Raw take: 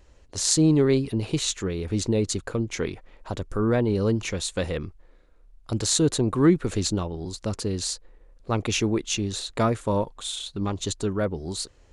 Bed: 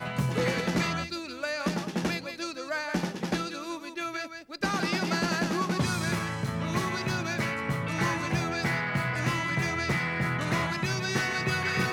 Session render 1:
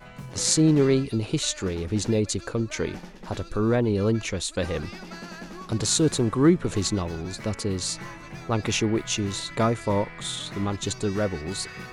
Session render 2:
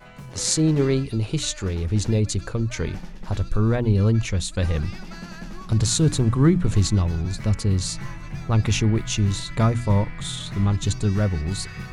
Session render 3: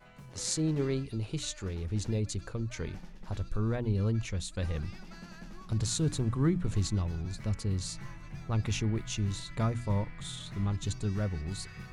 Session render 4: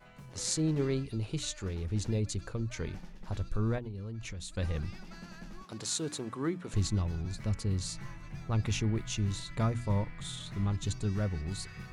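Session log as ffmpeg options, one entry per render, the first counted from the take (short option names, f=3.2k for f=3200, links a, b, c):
-filter_complex "[1:a]volume=-11.5dB[a];[0:a][a]amix=inputs=2:normalize=0"
-af "bandreject=f=60:t=h:w=6,bandreject=f=120:t=h:w=6,bandreject=f=180:t=h:w=6,bandreject=f=240:t=h:w=6,bandreject=f=300:t=h:w=6,asubboost=boost=5:cutoff=160"
-af "volume=-10.5dB"
-filter_complex "[0:a]asettb=1/sr,asplit=3[a][b][c];[a]atrim=end=3.784[d];[b]atrim=start=3.78:end=4.52,asetpts=PTS-STARTPTS,afade=t=in:d=0.004:c=qsin,afade=t=out:st=0.736:d=0.004:c=qsin,acompressor=threshold=-36dB:ratio=16:attack=3.2:release=140:knee=1:detection=peak[e];[c]atrim=start=4.516[f];[d][e]acrossfade=d=0.004:c1=hsin:c2=qsin[g];[g][f]acrossfade=d=0.004:c1=qsin:c2=hsin,asettb=1/sr,asplit=3[h][i][j];[h]atrim=end=5.644[k];[i]atrim=start=5.64:end=6.74,asetpts=PTS-STARTPTS,afade=t=in:d=0.004:c=qsin,afade=t=out:st=1.096:d=0.004:c=qsin,highpass=310[l];[j]atrim=start=6.736[m];[k][l]acrossfade=d=0.004:c1=hsin:c2=qsin[n];[n][m]acrossfade=d=0.004:c1=qsin:c2=hsin"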